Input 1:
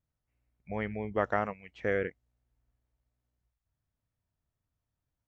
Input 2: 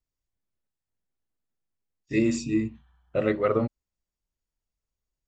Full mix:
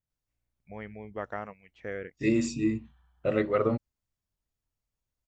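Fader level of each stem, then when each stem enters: −7.0, −2.0 decibels; 0.00, 0.10 seconds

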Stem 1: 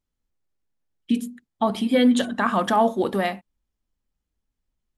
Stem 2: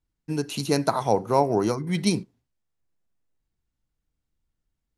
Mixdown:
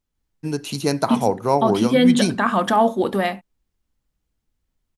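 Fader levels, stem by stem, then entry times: +2.5, +2.0 decibels; 0.00, 0.15 seconds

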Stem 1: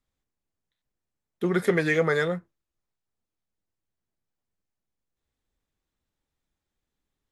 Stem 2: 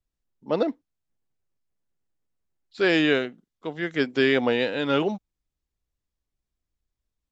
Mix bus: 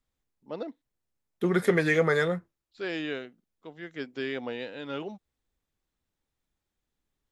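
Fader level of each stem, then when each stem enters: −0.5, −12.5 decibels; 0.00, 0.00 seconds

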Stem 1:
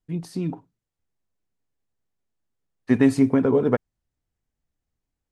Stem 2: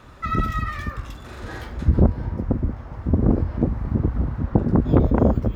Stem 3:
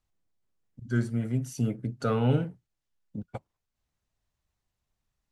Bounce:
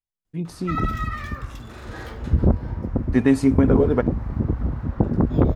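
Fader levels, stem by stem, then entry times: +0.5, −1.5, −16.5 decibels; 0.25, 0.45, 0.00 seconds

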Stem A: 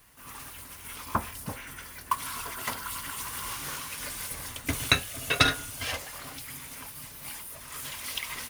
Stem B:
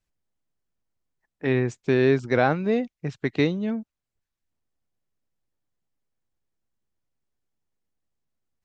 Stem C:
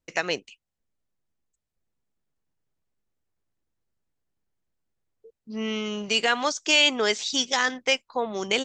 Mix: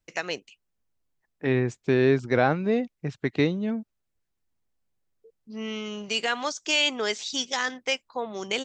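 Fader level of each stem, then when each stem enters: muted, −1.0 dB, −4.0 dB; muted, 0.00 s, 0.00 s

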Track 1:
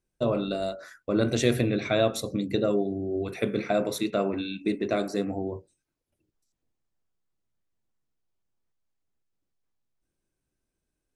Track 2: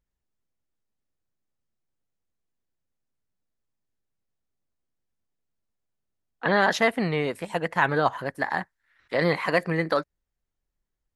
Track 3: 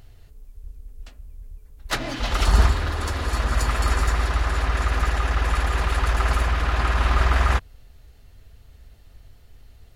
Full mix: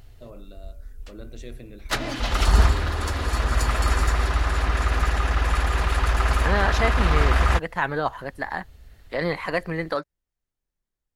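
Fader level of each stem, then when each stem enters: −18.5, −2.5, 0.0 decibels; 0.00, 0.00, 0.00 seconds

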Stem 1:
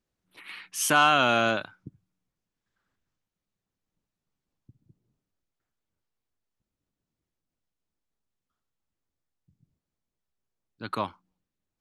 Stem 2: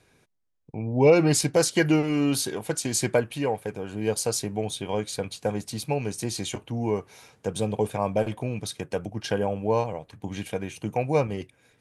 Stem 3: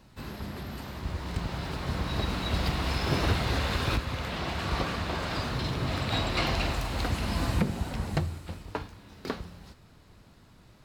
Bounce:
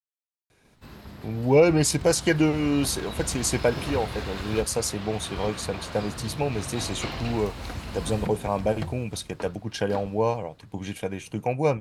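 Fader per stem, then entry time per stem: muted, 0.0 dB, −5.5 dB; muted, 0.50 s, 0.65 s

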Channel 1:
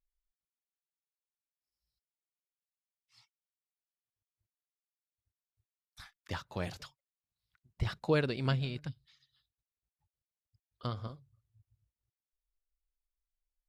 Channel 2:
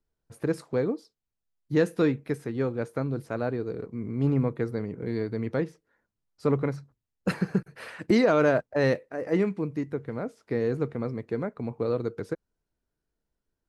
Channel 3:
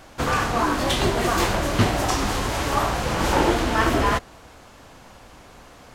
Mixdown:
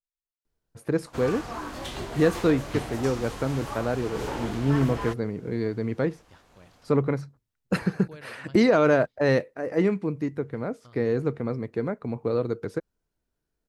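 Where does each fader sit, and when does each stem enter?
−16.5, +2.0, −13.5 decibels; 0.00, 0.45, 0.95 seconds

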